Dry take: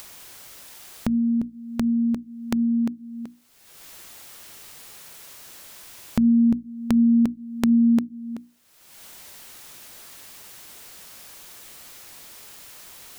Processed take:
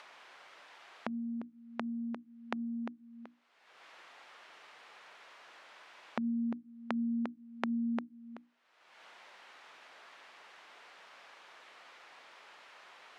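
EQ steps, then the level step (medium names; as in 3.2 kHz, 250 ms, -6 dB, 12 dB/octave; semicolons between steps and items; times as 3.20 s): band-pass 770–2600 Hz; tilt EQ -2 dB/octave; 0.0 dB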